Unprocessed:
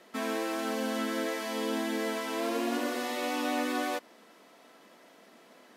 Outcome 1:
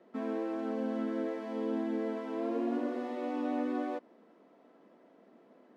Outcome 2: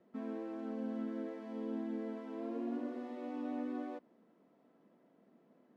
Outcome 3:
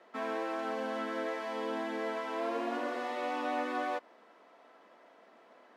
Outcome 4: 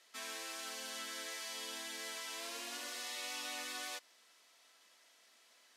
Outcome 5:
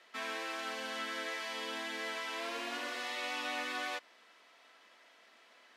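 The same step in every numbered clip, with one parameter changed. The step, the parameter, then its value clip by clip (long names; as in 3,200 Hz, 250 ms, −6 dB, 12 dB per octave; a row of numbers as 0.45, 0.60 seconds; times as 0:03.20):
resonant band-pass, frequency: 290, 100, 860, 6,600, 2,600 Hertz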